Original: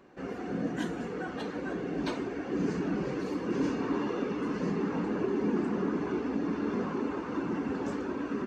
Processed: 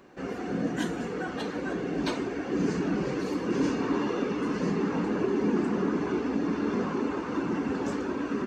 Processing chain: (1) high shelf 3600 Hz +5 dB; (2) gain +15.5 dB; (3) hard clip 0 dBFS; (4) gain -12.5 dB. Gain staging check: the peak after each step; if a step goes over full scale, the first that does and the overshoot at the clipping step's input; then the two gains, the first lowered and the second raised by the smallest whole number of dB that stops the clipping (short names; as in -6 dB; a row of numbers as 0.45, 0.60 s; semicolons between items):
-19.0, -3.5, -3.5, -16.0 dBFS; no overload